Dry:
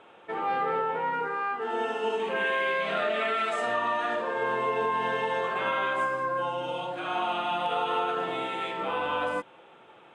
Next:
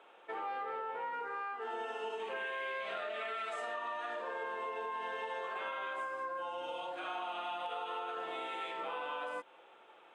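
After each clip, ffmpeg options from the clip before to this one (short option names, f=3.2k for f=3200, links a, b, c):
-af "highpass=400,acompressor=threshold=-31dB:ratio=6,volume=-5.5dB"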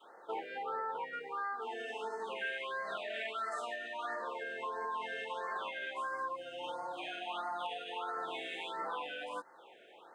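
-af "adynamicequalizer=threshold=0.00158:dfrequency=510:dqfactor=1:tfrequency=510:tqfactor=1:attack=5:release=100:ratio=0.375:range=3:mode=cutabove:tftype=bell,afftfilt=real='re*(1-between(b*sr/1024,980*pow(3000/980,0.5+0.5*sin(2*PI*1.5*pts/sr))/1.41,980*pow(3000/980,0.5+0.5*sin(2*PI*1.5*pts/sr))*1.41))':imag='im*(1-between(b*sr/1024,980*pow(3000/980,0.5+0.5*sin(2*PI*1.5*pts/sr))/1.41,980*pow(3000/980,0.5+0.5*sin(2*PI*1.5*pts/sr))*1.41))':win_size=1024:overlap=0.75,volume=4dB"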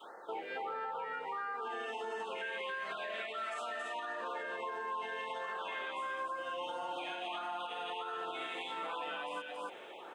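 -af "aecho=1:1:277:0.562,alimiter=level_in=11.5dB:limit=-24dB:level=0:latency=1:release=148,volume=-11.5dB,areverse,acompressor=mode=upward:threshold=-47dB:ratio=2.5,areverse,volume=4dB"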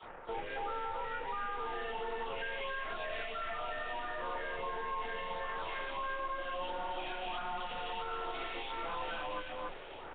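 -af "aeval=exprs='0.0282*(cos(1*acos(clip(val(0)/0.0282,-1,1)))-cos(1*PI/2))+0.00251*(cos(4*acos(clip(val(0)/0.0282,-1,1)))-cos(4*PI/2))+0.00316*(cos(8*acos(clip(val(0)/0.0282,-1,1)))-cos(8*PI/2))':c=same,afreqshift=13,volume=1dB" -ar 8000 -c:a nellymoser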